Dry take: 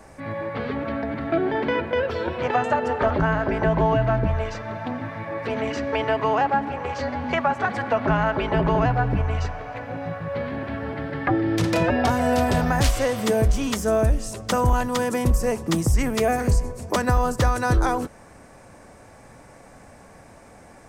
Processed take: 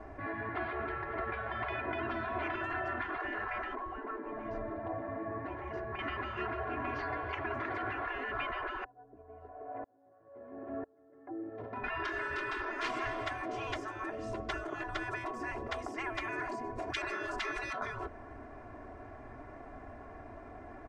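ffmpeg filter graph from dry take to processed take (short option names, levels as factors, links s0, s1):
-filter_complex "[0:a]asettb=1/sr,asplit=3[s0][s1][s2];[s0]atrim=end=3.754[s3];[s1]atrim=start=3.75:end=5.99,asetpts=PTS-STARTPTS,afade=t=in:d=0.004:c=qsin,afade=t=out:st=2.236:d=0.004:c=qsin,equalizer=f=3300:w=0.52:g=-14.5,bandreject=f=1300:w=14[s4];[s2]atrim=start=5.986[s5];[s3][s4]acrossfade=d=0.004:c1=hsin:c2=qsin[s6];[s6][s5]acrossfade=d=0.004:c1=qsin:c2=hsin,asettb=1/sr,asplit=3[s7][s8][s9];[s7]atrim=end=8.844[s10];[s8]atrim=start=8.84:end=11.84,asetpts=PTS-STARTPTS,afade=t=in:d=0.004:c=qsin,afade=t=out:st=2.996:d=0.004:c=qsin,bandpass=f=490:t=q:w=1.6,aeval=exprs='val(0)*pow(10,-34*if(lt(mod(-1*n/s,1),2*abs(-1)/1000),1-mod(-1*n/s,1)/(2*abs(-1)/1000),(mod(-1*n/s,1)-2*abs(-1)/1000)/(1-2*abs(-1)/1000))/20)':c=same[s11];[s9]atrim=start=11.836[s12];[s10][s11]acrossfade=d=0.004:c1=hsin:c2=qsin[s13];[s13][s12]acrossfade=d=0.004:c1=qsin:c2=hsin,asettb=1/sr,asplit=3[s14][s15][s16];[s14]atrim=end=16.784[s17];[s15]atrim=start=16.78:end=17.73,asetpts=PTS-STARTPTS,afade=t=in:d=0.004:c=qsin,afade=t=out:st=0.946:d=0.004:c=qsin,acontrast=87,highpass=f=71:p=1[s18];[s16]atrim=start=17.726[s19];[s17][s18]acrossfade=d=0.004:c1=hsin:c2=qsin[s20];[s20][s19]acrossfade=d=0.004:c1=qsin:c2=hsin,lowpass=1700,afftfilt=real='re*lt(hypot(re,im),0.112)':imag='im*lt(hypot(re,im),0.112)':win_size=1024:overlap=0.75,aecho=1:1:2.9:0.86,volume=0.75"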